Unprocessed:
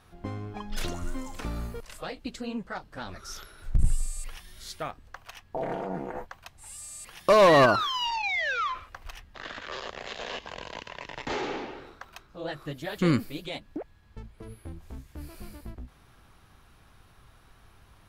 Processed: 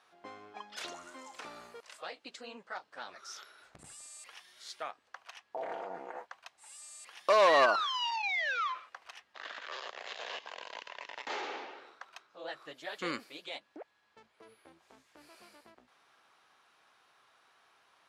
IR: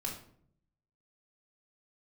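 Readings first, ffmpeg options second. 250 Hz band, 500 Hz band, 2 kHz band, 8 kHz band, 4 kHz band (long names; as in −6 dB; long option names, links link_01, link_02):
−17.0 dB, −7.0 dB, −4.0 dB, −7.0 dB, −4.0 dB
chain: -af "highpass=580,lowpass=7600,volume=-4dB"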